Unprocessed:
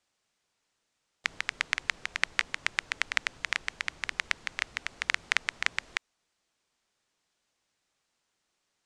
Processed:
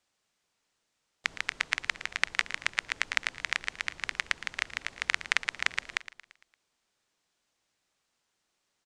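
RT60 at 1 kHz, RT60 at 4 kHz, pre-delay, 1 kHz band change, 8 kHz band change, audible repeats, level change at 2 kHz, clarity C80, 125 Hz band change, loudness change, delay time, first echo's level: no reverb, no reverb, no reverb, 0.0 dB, 0.0 dB, 4, 0.0 dB, no reverb, 0.0 dB, 0.0 dB, 114 ms, -15.0 dB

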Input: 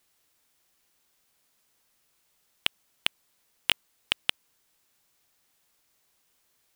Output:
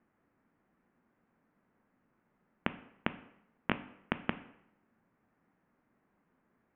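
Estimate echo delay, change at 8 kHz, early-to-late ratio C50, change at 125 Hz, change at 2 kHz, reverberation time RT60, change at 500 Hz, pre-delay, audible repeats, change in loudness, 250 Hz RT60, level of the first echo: no echo, under -35 dB, 15.0 dB, +9.0 dB, -6.5 dB, 0.75 s, +5.0 dB, 10 ms, no echo, -8.5 dB, 0.75 s, no echo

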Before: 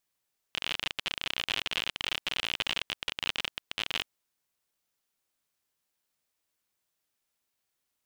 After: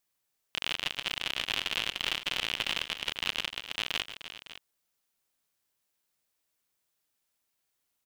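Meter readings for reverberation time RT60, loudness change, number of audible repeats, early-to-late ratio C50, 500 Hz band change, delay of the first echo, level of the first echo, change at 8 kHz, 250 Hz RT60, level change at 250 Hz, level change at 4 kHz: no reverb, +0.5 dB, 3, no reverb, +0.5 dB, 143 ms, -19.0 dB, +1.5 dB, no reverb, +0.5 dB, +0.5 dB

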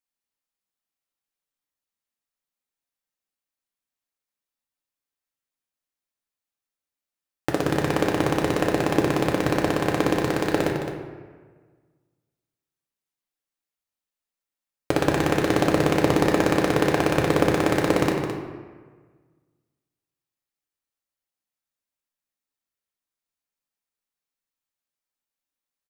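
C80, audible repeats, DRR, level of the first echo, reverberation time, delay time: 4.0 dB, 1, -1.0 dB, -9.0 dB, 1.5 s, 214 ms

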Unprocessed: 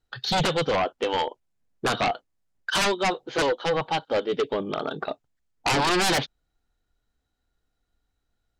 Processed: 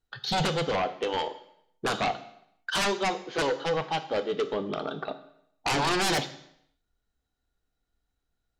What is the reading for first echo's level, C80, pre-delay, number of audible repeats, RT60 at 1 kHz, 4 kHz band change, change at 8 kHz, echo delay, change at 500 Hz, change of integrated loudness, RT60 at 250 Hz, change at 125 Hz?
no echo, 16.5 dB, 3 ms, no echo, 0.70 s, -3.5 dB, -3.5 dB, no echo, -3.5 dB, -3.5 dB, 0.75 s, -2.5 dB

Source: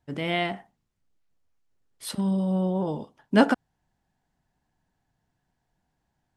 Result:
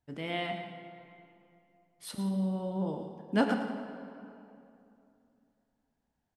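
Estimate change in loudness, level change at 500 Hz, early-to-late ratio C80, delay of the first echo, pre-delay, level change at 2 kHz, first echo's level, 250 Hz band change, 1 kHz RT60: -8.0 dB, -7.0 dB, 5.5 dB, 111 ms, 4 ms, -7.5 dB, -10.5 dB, -6.5 dB, 2.7 s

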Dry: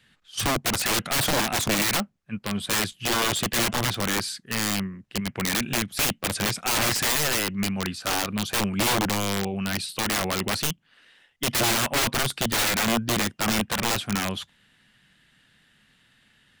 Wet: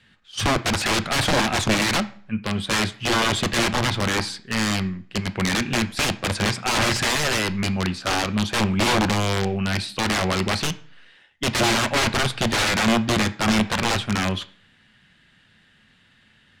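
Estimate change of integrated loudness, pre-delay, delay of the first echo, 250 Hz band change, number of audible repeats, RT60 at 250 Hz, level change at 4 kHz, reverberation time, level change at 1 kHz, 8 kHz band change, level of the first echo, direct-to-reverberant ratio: +2.5 dB, 3 ms, no echo, +5.0 dB, no echo, 0.55 s, +2.5 dB, 0.50 s, +4.0 dB, -1.5 dB, no echo, 10.0 dB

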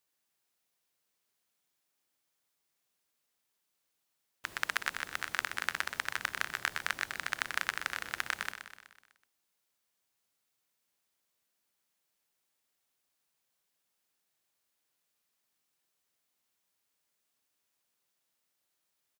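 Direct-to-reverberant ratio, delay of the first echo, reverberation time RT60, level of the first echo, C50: no reverb, 125 ms, no reverb, -9.5 dB, no reverb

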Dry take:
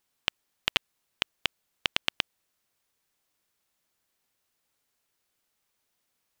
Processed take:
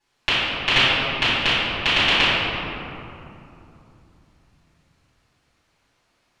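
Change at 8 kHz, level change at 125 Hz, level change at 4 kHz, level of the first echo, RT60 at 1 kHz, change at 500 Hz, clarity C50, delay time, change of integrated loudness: +7.0 dB, +20.0 dB, +12.5 dB, no echo, 2.8 s, +17.0 dB, -4.0 dB, no echo, +13.0 dB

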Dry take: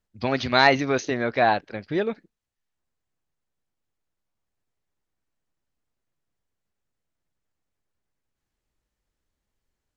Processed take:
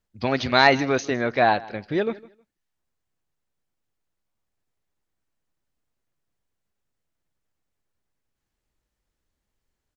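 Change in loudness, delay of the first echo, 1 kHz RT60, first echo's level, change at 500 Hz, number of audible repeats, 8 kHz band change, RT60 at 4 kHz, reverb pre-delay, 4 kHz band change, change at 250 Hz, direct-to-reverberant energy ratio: +1.0 dB, 157 ms, no reverb, -21.0 dB, +1.0 dB, 2, no reading, no reverb, no reverb, +1.0 dB, +1.0 dB, no reverb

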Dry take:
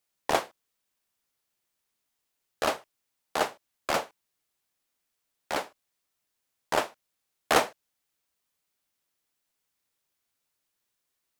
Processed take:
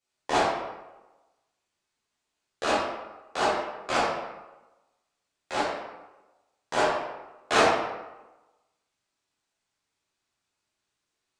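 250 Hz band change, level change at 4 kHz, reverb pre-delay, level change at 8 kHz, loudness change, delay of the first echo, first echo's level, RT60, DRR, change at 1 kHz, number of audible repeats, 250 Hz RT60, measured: +5.0 dB, +2.5 dB, 9 ms, -0.5 dB, +2.5 dB, no echo, no echo, 1.1 s, -10.0 dB, +4.5 dB, no echo, 1.0 s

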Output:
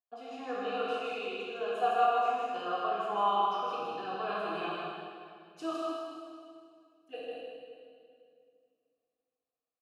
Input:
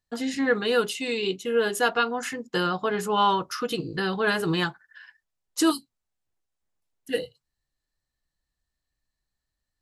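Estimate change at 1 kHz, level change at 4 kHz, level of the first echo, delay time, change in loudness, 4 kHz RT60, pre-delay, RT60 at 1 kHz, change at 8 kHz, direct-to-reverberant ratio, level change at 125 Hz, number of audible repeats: -2.0 dB, -12.5 dB, -3.5 dB, 157 ms, -7.5 dB, 1.9 s, 16 ms, 2.0 s, under -20 dB, -7.0 dB, -20.0 dB, 1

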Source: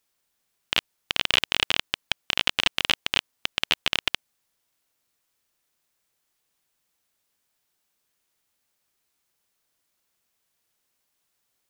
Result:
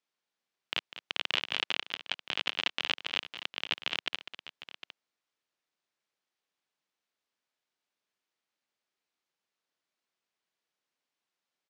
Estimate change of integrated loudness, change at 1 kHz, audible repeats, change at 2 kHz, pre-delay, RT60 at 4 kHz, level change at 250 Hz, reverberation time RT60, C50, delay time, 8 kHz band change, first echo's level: -8.5 dB, -7.5 dB, 2, -8.0 dB, no reverb, no reverb, -9.0 dB, no reverb, no reverb, 199 ms, -15.0 dB, -13.0 dB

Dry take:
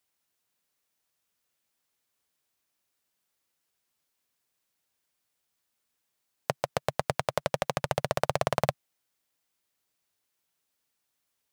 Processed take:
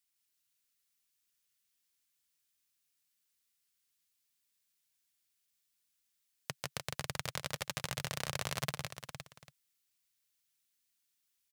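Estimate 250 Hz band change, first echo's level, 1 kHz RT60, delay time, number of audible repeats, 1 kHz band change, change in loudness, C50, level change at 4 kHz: -8.5 dB, -3.0 dB, no reverb, 158 ms, 3, -13.5 dB, -9.0 dB, no reverb, -1.5 dB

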